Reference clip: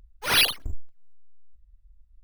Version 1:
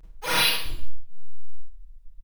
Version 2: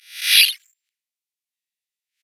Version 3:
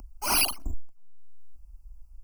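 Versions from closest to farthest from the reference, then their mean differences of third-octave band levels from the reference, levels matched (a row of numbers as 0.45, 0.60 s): 3, 1, 2; 5.5, 9.0, 13.5 dB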